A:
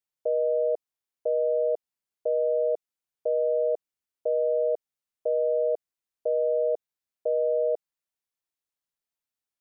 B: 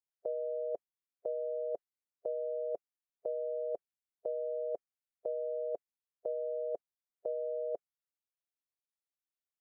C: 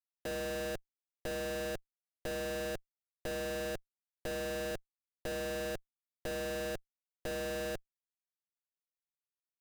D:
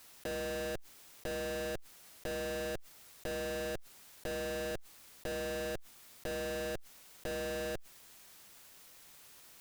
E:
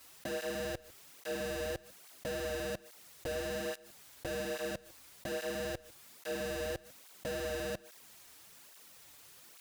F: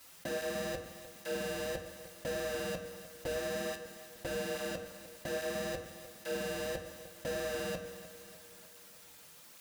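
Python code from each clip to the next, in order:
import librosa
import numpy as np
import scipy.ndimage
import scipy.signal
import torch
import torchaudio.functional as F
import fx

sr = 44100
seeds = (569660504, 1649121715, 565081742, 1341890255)

y1 = fx.noise_reduce_blind(x, sr, reduce_db=12)
y2 = fx.schmitt(y1, sr, flips_db=-44.0)
y2 = y2 * 10.0 ** (2.5 / 20.0)
y3 = fx.env_flatten(y2, sr, amount_pct=70)
y3 = y3 * 10.0 ** (-1.0 / 20.0)
y4 = y3 + 10.0 ** (-21.5 / 20.0) * np.pad(y3, (int(151 * sr / 1000.0), 0))[:len(y3)]
y4 = fx.flanger_cancel(y4, sr, hz=1.2, depth_ms=6.0)
y4 = y4 * 10.0 ** (3.5 / 20.0)
y5 = fx.echo_feedback(y4, sr, ms=301, feedback_pct=58, wet_db=-15)
y5 = fx.rev_fdn(y5, sr, rt60_s=0.87, lf_ratio=0.85, hf_ratio=0.5, size_ms=34.0, drr_db=4.5)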